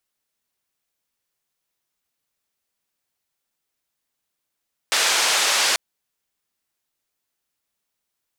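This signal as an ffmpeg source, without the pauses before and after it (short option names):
-f lavfi -i "anoisesrc=c=white:d=0.84:r=44100:seed=1,highpass=f=590,lowpass=f=6300,volume=-9dB"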